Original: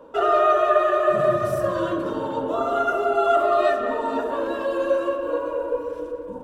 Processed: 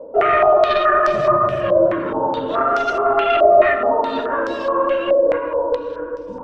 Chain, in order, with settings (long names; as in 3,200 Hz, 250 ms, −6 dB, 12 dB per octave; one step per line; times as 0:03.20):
tube saturation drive 15 dB, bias 0.25
low-pass on a step sequencer 4.7 Hz 600–5,400 Hz
level +3.5 dB